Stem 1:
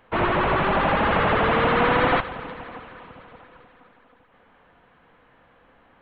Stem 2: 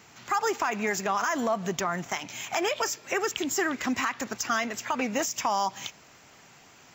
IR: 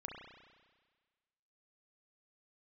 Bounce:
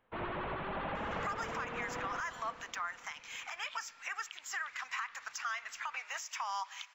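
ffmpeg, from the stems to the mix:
-filter_complex "[0:a]volume=-17.5dB[a];[1:a]highpass=f=1.1k:w=0.5412,highpass=f=1.1k:w=1.3066,aemphasis=mode=reproduction:type=75kf,adelay=950,volume=-2dB,asplit=2[b][c];[c]volume=-18dB[d];[2:a]atrim=start_sample=2205[e];[d][e]afir=irnorm=-1:irlink=0[f];[a][b][f]amix=inputs=3:normalize=0,alimiter=level_in=4dB:limit=-24dB:level=0:latency=1:release=241,volume=-4dB"

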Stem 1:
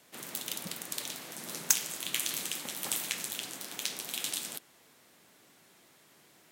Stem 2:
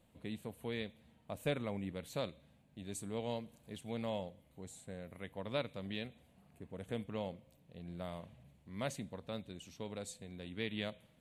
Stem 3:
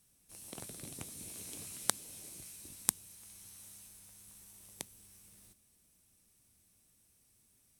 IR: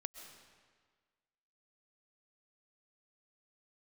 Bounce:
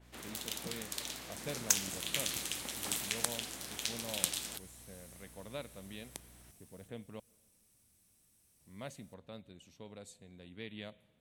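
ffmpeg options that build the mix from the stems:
-filter_complex "[0:a]highshelf=f=8.7k:g=-8.5,aeval=exprs='val(0)+0.00141*(sin(2*PI*60*n/s)+sin(2*PI*2*60*n/s)/2+sin(2*PI*3*60*n/s)/3+sin(2*PI*4*60*n/s)/4+sin(2*PI*5*60*n/s)/5)':c=same,adynamicequalizer=threshold=0.00447:dfrequency=3500:dqfactor=0.7:tfrequency=3500:tqfactor=0.7:attack=5:release=100:ratio=0.375:range=1.5:mode=boostabove:tftype=highshelf,volume=-2.5dB[a];[1:a]volume=-7dB,asplit=3[b][c][d];[b]atrim=end=7.2,asetpts=PTS-STARTPTS,afade=t=out:st=7.196:d=0.004:c=hsin[e];[c]atrim=start=7.2:end=8.6,asetpts=PTS-STARTPTS,volume=0[f];[d]atrim=start=8.6,asetpts=PTS-STARTPTS,afade=t=in:d=0.004:c=hsin[g];[e][f][g]concat=n=3:v=0:a=1,asplit=2[h][i];[i]volume=-16.5dB[j];[2:a]acompressor=mode=upward:threshold=-60dB:ratio=2.5,adelay=1350,volume=-3.5dB[k];[3:a]atrim=start_sample=2205[l];[j][l]afir=irnorm=-1:irlink=0[m];[a][h][k][m]amix=inputs=4:normalize=0"

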